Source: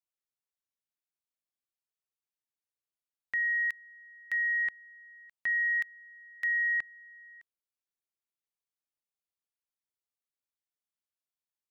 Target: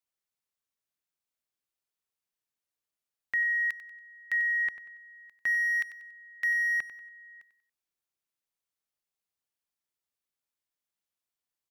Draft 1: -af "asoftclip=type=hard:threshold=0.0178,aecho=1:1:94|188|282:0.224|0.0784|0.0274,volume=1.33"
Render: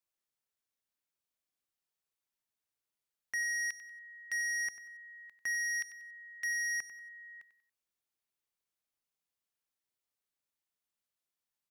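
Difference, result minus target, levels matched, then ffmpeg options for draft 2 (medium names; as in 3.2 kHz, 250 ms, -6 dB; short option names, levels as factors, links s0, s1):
hard clipper: distortion +21 dB
-af "asoftclip=type=hard:threshold=0.0501,aecho=1:1:94|188|282:0.224|0.0784|0.0274,volume=1.33"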